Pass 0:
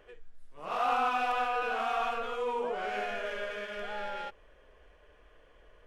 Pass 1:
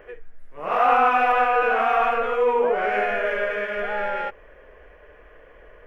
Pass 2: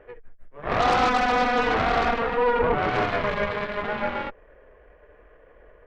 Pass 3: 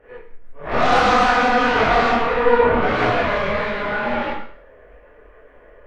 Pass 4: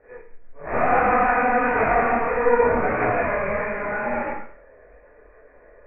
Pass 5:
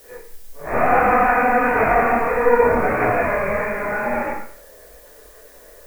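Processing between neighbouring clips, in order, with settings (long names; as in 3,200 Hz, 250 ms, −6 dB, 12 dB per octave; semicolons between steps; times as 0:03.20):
octave-band graphic EQ 500/2,000/4,000/8,000 Hz +5/+8/−11/−11 dB; level +8.5 dB
harmonic generator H 2 −12 dB, 8 −10 dB, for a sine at −6 dBFS; high-shelf EQ 2,200 Hz −11.5 dB; level −2.5 dB
four-comb reverb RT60 0.54 s, combs from 26 ms, DRR −6.5 dB; micro pitch shift up and down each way 56 cents; level +2 dB
Chebyshev low-pass with heavy ripple 2,500 Hz, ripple 3 dB; level −2 dB
background noise blue −52 dBFS; level +3 dB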